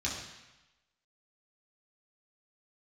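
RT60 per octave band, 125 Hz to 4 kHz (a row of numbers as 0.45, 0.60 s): 1.0, 0.95, 0.95, 1.1, 1.1, 1.0 s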